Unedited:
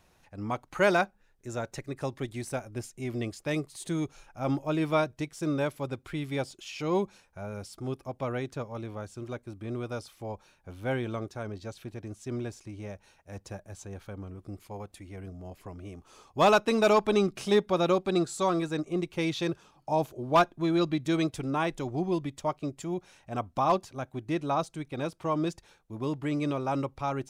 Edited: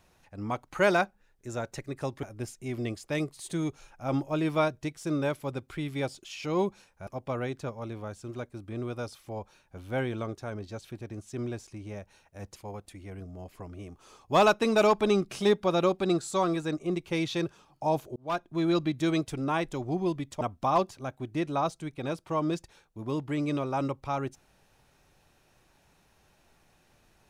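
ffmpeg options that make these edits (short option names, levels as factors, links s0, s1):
-filter_complex "[0:a]asplit=6[s0][s1][s2][s3][s4][s5];[s0]atrim=end=2.232[s6];[s1]atrim=start=2.588:end=7.432[s7];[s2]atrim=start=7.998:end=13.492[s8];[s3]atrim=start=14.618:end=20.22,asetpts=PTS-STARTPTS,afade=t=out:st=5.598:d=0.004:c=hsin[s9];[s4]atrim=start=20.22:end=22.472,asetpts=PTS-STARTPTS,afade=t=in:d=0.48[s10];[s5]atrim=start=23.348[s11];[s6][s7]acrossfade=d=0.004:c1=hsin:c2=hsin[s12];[s12][s8]acrossfade=d=0.004:c1=hsin:c2=hsin[s13];[s9][s10]concat=n=2:v=0:a=1[s14];[s13][s14]acrossfade=d=0.004:c1=hsin:c2=hsin[s15];[s15][s11]acrossfade=d=0.004:c1=hsin:c2=hsin"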